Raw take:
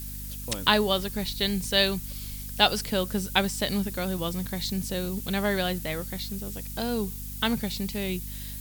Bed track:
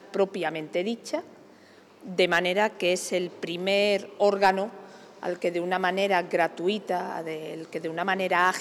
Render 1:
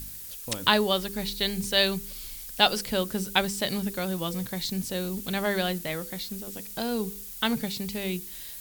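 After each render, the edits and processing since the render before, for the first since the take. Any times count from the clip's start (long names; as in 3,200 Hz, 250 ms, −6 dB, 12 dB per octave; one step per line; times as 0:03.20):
hum removal 50 Hz, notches 10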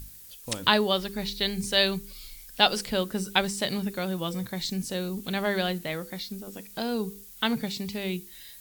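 noise reduction from a noise print 7 dB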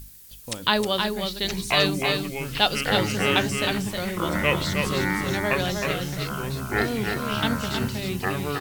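delay with pitch and tempo change per echo 760 ms, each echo −6 semitones, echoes 3
single-tap delay 314 ms −5 dB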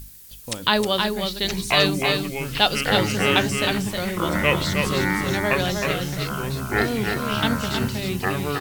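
level +2.5 dB
brickwall limiter −3 dBFS, peak gain reduction 1.5 dB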